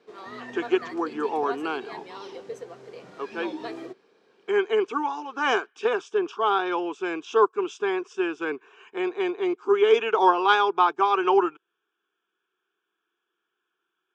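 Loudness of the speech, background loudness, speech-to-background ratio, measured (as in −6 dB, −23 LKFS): −24.5 LKFS, −39.5 LKFS, 15.0 dB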